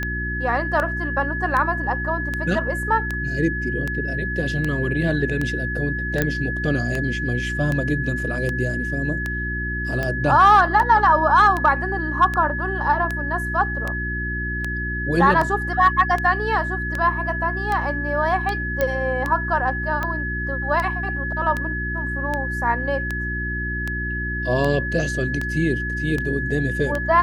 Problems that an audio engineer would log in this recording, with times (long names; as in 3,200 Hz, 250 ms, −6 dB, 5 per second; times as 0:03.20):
mains hum 60 Hz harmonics 6 −28 dBFS
scratch tick 78 rpm −12 dBFS
whistle 1,700 Hz −26 dBFS
0:06.22: click −6 dBFS
0:18.81: click −8 dBFS